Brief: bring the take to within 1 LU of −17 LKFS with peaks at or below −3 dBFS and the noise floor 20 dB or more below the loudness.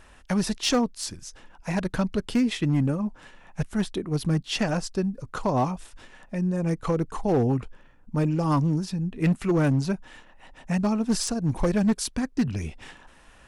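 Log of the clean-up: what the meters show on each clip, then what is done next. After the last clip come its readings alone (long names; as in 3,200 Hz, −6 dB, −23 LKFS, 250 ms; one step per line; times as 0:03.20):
share of clipped samples 1.3%; peaks flattened at −16.5 dBFS; integrated loudness −26.5 LKFS; sample peak −16.5 dBFS; target loudness −17.0 LKFS
→ clipped peaks rebuilt −16.5 dBFS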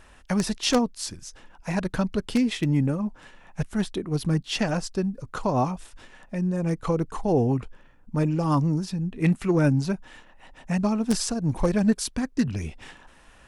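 share of clipped samples 0.0%; integrated loudness −26.0 LKFS; sample peak −7.5 dBFS; target loudness −17.0 LKFS
→ level +9 dB
brickwall limiter −3 dBFS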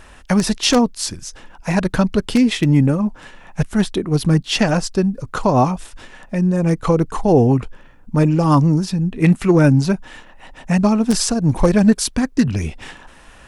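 integrated loudness −17.0 LKFS; sample peak −3.0 dBFS; background noise floor −44 dBFS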